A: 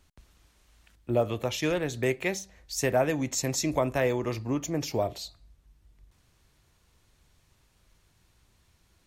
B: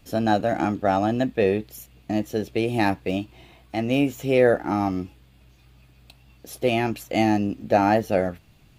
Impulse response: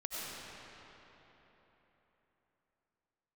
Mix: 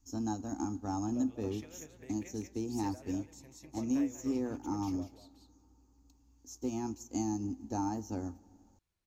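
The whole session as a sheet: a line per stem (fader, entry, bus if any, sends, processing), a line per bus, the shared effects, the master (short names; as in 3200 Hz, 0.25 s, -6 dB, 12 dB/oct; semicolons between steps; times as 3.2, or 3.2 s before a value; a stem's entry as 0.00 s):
-13.5 dB, 0.00 s, no send, echo send -4.5 dB, compressor 10:1, threshold -30 dBFS, peak gain reduction 11 dB
-3.0 dB, 0.00 s, send -19 dB, no echo send, EQ curve 100 Hz 0 dB, 150 Hz -22 dB, 260 Hz +3 dB, 620 Hz -24 dB, 910 Hz -2 dB, 2000 Hz -25 dB, 3600 Hz -19 dB, 6600 Hz +12 dB, 9900 Hz -24 dB, 15000 Hz -3 dB; compressor 3:1, threshold -27 dBFS, peak gain reduction 7 dB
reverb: on, RT60 3.9 s, pre-delay 55 ms
echo: echo 0.192 s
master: upward expander 1.5:1, over -46 dBFS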